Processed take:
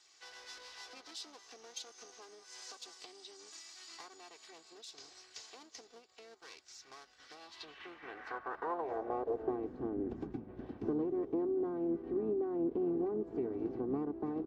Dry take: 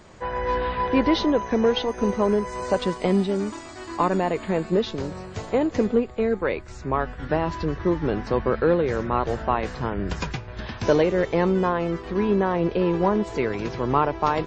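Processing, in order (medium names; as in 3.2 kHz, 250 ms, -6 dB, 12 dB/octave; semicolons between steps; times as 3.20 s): comb filter that takes the minimum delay 2.6 ms; dynamic bell 2.3 kHz, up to -7 dB, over -40 dBFS, Q 0.86; compression 4:1, threshold -26 dBFS, peak gain reduction 9 dB; band-pass sweep 5.3 kHz -> 270 Hz, 7.32–9.75 s; harmony voices -5 st -16 dB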